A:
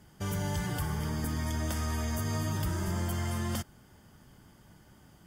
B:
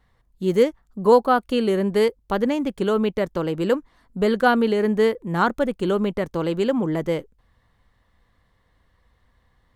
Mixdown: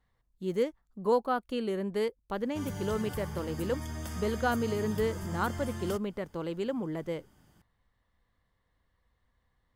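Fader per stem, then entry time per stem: −6.0, −11.5 decibels; 2.35, 0.00 seconds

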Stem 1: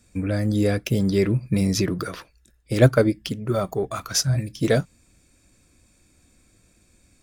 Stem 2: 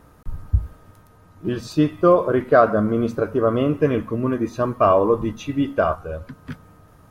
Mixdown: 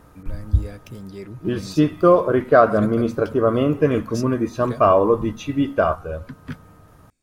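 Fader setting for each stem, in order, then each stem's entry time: −15.5, +1.0 decibels; 0.00, 0.00 seconds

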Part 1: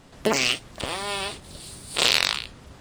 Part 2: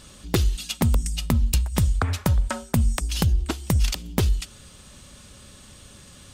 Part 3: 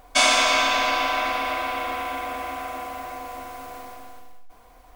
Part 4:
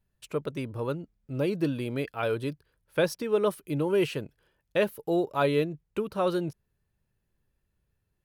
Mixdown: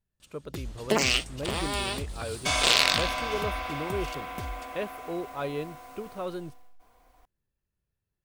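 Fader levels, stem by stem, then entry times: −2.0, −17.0, −9.5, −8.0 decibels; 0.65, 0.20, 2.30, 0.00 seconds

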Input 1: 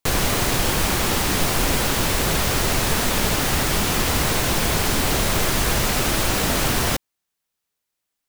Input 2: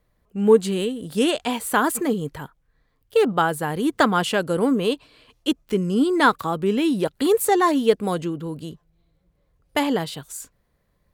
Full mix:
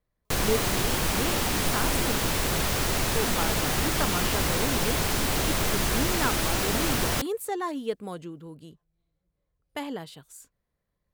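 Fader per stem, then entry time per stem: −5.5, −12.5 decibels; 0.25, 0.00 seconds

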